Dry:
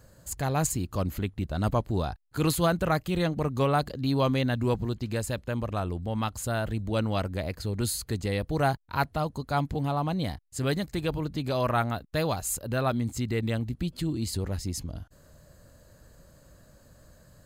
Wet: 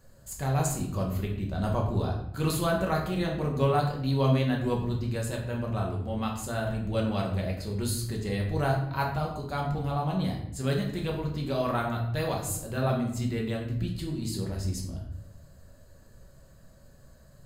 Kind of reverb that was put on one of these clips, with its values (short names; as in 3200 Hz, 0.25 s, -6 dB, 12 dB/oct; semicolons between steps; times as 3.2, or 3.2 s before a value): shoebox room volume 160 m³, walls mixed, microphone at 1.1 m; gain -5.5 dB